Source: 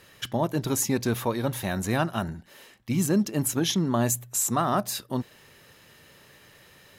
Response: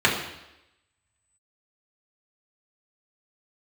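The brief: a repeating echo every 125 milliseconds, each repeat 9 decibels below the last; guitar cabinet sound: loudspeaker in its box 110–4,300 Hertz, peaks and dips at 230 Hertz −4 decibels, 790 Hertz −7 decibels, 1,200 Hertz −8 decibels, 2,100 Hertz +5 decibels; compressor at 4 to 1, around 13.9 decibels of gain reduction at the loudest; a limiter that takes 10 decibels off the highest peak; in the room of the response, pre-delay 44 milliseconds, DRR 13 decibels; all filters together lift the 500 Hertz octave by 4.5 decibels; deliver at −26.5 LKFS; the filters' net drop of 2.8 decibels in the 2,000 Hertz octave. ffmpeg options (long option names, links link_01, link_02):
-filter_complex "[0:a]equalizer=frequency=500:width_type=o:gain=7.5,equalizer=frequency=2000:width_type=o:gain=-4.5,acompressor=threshold=-34dB:ratio=4,alimiter=level_in=7dB:limit=-24dB:level=0:latency=1,volume=-7dB,aecho=1:1:125|250|375|500:0.355|0.124|0.0435|0.0152,asplit=2[link_01][link_02];[1:a]atrim=start_sample=2205,adelay=44[link_03];[link_02][link_03]afir=irnorm=-1:irlink=0,volume=-32dB[link_04];[link_01][link_04]amix=inputs=2:normalize=0,highpass=110,equalizer=frequency=230:width_type=q:width=4:gain=-4,equalizer=frequency=790:width_type=q:width=4:gain=-7,equalizer=frequency=1200:width_type=q:width=4:gain=-8,equalizer=frequency=2100:width_type=q:width=4:gain=5,lowpass=frequency=4300:width=0.5412,lowpass=frequency=4300:width=1.3066,volume=17.5dB"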